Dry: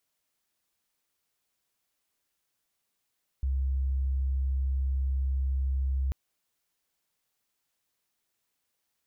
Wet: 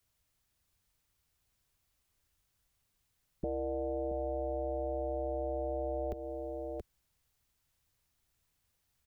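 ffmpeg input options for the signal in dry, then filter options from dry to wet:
-f lavfi -i "aevalsrc='0.0562*sin(2*PI*66.6*t)':d=2.69:s=44100"
-filter_complex "[0:a]acrossover=split=110|190[a][b][c];[a]aeval=exprs='0.0501*sin(PI/2*6.31*val(0)/0.0501)':c=same[d];[d][b][c]amix=inputs=3:normalize=0,aecho=1:1:677:0.316,acompressor=threshold=-34dB:ratio=4"

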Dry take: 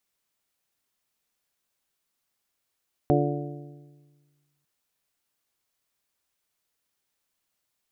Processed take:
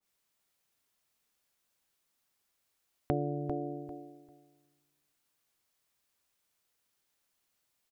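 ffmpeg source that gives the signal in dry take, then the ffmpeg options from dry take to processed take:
-f lavfi -i "aevalsrc='0.0794*pow(10,-3*t/1.63)*sin(2*PI*145*t)+0.075*pow(10,-3*t/1.324)*sin(2*PI*290*t)+0.0708*pow(10,-3*t/1.253)*sin(2*PI*348*t)+0.0668*pow(10,-3*t/1.172)*sin(2*PI*435*t)+0.0631*pow(10,-3*t/1.075)*sin(2*PI*580*t)+0.0596*pow(10,-3*t/1.006)*sin(2*PI*725*t)':d=1.55:s=44100"
-filter_complex "[0:a]asplit=2[a][b];[b]aecho=0:1:396|792|1188:0.355|0.0639|0.0115[c];[a][c]amix=inputs=2:normalize=0,acompressor=threshold=-32dB:ratio=2.5,adynamicequalizer=threshold=0.00447:dfrequency=1500:dqfactor=0.7:tfrequency=1500:tqfactor=0.7:attack=5:release=100:ratio=0.375:range=2:mode=cutabove:tftype=highshelf"

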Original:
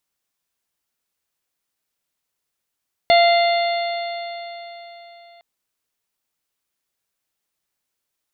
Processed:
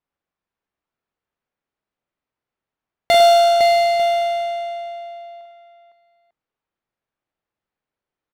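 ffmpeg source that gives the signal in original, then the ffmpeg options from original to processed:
-f lavfi -i "aevalsrc='0.316*pow(10,-3*t/3.82)*sin(2*PI*686.93*t)+0.0316*pow(10,-3*t/3.82)*sin(2*PI*1379.39*t)+0.126*pow(10,-3*t/3.82)*sin(2*PI*2082.85*t)+0.0447*pow(10,-3*t/3.82)*sin(2*PI*2802.64*t)+0.0794*pow(10,-3*t/3.82)*sin(2*PI*3543.87*t)+0.0794*pow(10,-3*t/3.82)*sin(2*PI*4311.4*t)':d=2.31:s=44100"
-filter_complex "[0:a]adynamicsmooth=sensitivity=2:basefreq=2k,asplit=2[a][b];[b]aecho=0:1:44|102|507|897:0.668|0.398|0.501|0.211[c];[a][c]amix=inputs=2:normalize=0"

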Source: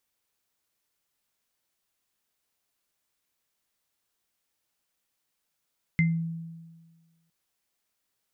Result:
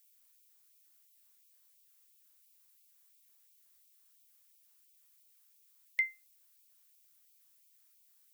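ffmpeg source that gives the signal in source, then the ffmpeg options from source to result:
-f lavfi -i "aevalsrc='0.119*pow(10,-3*t/1.49)*sin(2*PI*165*t)+0.0841*pow(10,-3*t/0.23)*sin(2*PI*2080*t)':d=1.31:s=44100"
-af "aemphasis=mode=production:type=50kf,afftfilt=real='re*gte(b*sr/1024,770*pow(2200/770,0.5+0.5*sin(2*PI*2.9*pts/sr)))':imag='im*gte(b*sr/1024,770*pow(2200/770,0.5+0.5*sin(2*PI*2.9*pts/sr)))':win_size=1024:overlap=0.75"

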